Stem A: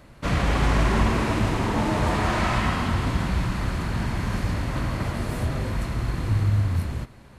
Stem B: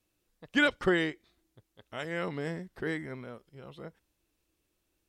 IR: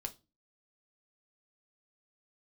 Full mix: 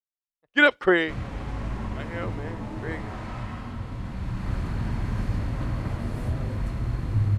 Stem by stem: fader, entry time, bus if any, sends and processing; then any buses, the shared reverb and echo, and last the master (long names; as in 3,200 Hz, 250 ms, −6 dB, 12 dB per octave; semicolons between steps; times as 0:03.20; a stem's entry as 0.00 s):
−9.0 dB, 0.85 s, send −6.5 dB, spectral tilt −1.5 dB per octave; automatic ducking −16 dB, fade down 1.45 s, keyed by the second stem
+0.5 dB, 0.00 s, no send, bass and treble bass −11 dB, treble −12 dB; multiband upward and downward expander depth 100%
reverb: on, pre-delay 4 ms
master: no processing